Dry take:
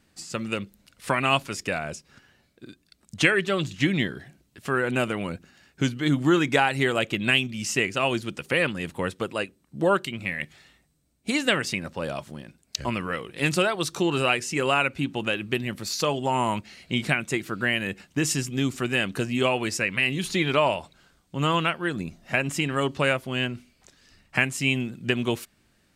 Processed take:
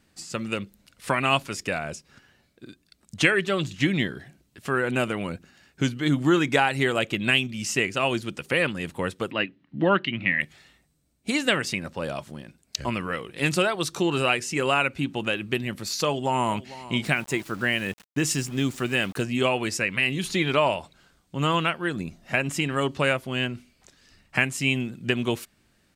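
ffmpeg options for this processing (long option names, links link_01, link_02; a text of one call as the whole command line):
ffmpeg -i in.wav -filter_complex "[0:a]asettb=1/sr,asplit=3[link_01][link_02][link_03];[link_01]atrim=end=9.314[link_04];[link_02]atrim=start=9.31:end=10.41,asetpts=PTS-STARTPTS,afade=type=in:duration=0.004:curve=qsin,afade=type=out:start_time=1.096:duration=0.004:curve=qsin,highpass=100,equalizer=frequency=120:width_type=q:width=4:gain=6,equalizer=frequency=190:width_type=q:width=4:gain=4,equalizer=frequency=280:width_type=q:width=4:gain=8,equalizer=frequency=460:width_type=q:width=4:gain=-5,equalizer=frequency=1900:width_type=q:width=4:gain=9,equalizer=frequency=2900:width_type=q:width=4:gain=6,lowpass=frequency=3900:width=0.5412,lowpass=frequency=3900:width=1.3066[link_05];[link_03]atrim=start=10.406[link_06];[link_04][link_05]acrossfade=duration=0.004:curve1=hsin:curve2=qsin[link_07];[link_07][link_06]acrossfade=duration=0.004:curve1=qsin:curve2=hsin,asplit=2[link_08][link_09];[link_09]afade=type=in:start_time=16.04:duration=0.01,afade=type=out:start_time=16.52:duration=0.01,aecho=0:1:450|900|1350:0.141254|0.0423761|0.0127128[link_10];[link_08][link_10]amix=inputs=2:normalize=0,asettb=1/sr,asplit=3[link_11][link_12][link_13];[link_11]atrim=end=17.054[link_14];[link_12]atrim=start=17.05:end=19.22,asetpts=PTS-STARTPTS,afade=type=in:duration=0.004:curve=qsin,afade=type=out:start_time=2.166:duration=0.004:curve=qsin,aeval=exprs='val(0)*gte(abs(val(0)),0.00891)':channel_layout=same[link_15];[link_13]atrim=start=19.216[link_16];[link_14][link_15]acrossfade=duration=0.004:curve1=hsin:curve2=qsin[link_17];[link_17][link_16]acrossfade=duration=0.004:curve1=qsin:curve2=hsin" out.wav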